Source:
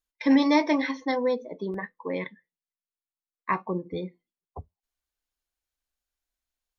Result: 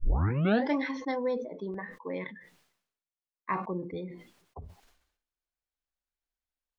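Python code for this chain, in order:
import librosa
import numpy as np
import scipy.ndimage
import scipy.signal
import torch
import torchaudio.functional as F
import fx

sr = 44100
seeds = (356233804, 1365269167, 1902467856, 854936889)

y = fx.tape_start_head(x, sr, length_s=0.74)
y = fx.lowpass(y, sr, hz=3100.0, slope=6)
y = fx.sustainer(y, sr, db_per_s=79.0)
y = F.gain(torch.from_numpy(y), -5.0).numpy()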